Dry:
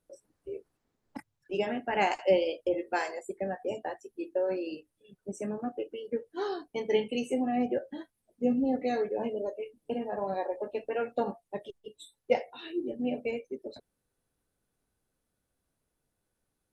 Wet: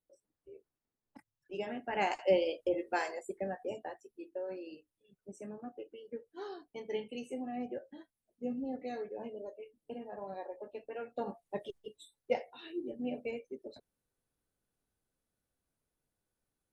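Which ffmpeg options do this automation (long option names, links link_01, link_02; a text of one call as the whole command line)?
ffmpeg -i in.wav -af "volume=8.5dB,afade=type=in:start_time=1.18:duration=1.22:silence=0.281838,afade=type=out:start_time=3.29:duration=0.94:silence=0.421697,afade=type=in:start_time=11.12:duration=0.65:silence=0.266073,afade=type=out:start_time=11.77:duration=0.23:silence=0.446684" out.wav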